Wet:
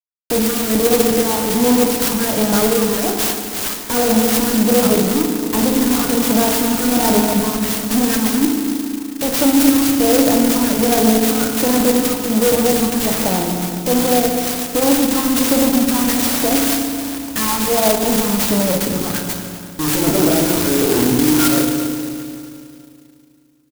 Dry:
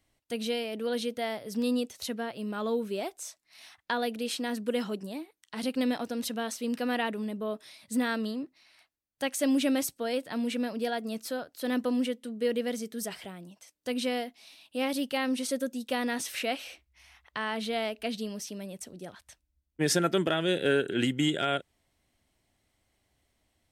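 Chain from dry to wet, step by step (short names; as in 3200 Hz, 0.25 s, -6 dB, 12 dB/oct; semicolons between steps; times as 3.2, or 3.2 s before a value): low shelf 240 Hz -10.5 dB; notch 390 Hz, Q 12; in parallel at -1 dB: negative-ratio compressor -38 dBFS; on the sum: fuzz box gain 49 dB, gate -47 dBFS; phaser stages 6, 1.3 Hz, lowest notch 520–4400 Hz; on a send: feedback echo 0.253 s, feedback 53%, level -15.5 dB; on the sum: FDN reverb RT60 2.2 s, low-frequency decay 1.3×, high-frequency decay 0.65×, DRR 1.5 dB; clock jitter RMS 0.14 ms; gain -2 dB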